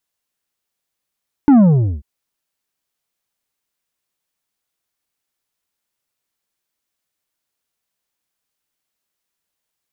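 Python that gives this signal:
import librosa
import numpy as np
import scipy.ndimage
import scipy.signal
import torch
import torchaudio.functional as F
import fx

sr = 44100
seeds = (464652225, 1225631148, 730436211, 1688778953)

y = fx.sub_drop(sr, level_db=-6.5, start_hz=300.0, length_s=0.54, drive_db=7, fade_s=0.45, end_hz=65.0)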